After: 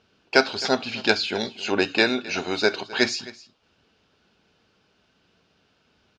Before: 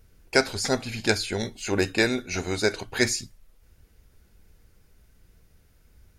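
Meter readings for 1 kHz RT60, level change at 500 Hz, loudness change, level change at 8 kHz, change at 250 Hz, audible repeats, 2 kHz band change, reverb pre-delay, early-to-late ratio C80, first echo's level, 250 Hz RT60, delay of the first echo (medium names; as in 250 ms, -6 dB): no reverb, +2.0 dB, +2.5 dB, -6.0 dB, +1.0 dB, 1, +3.5 dB, no reverb, no reverb, -19.0 dB, no reverb, 263 ms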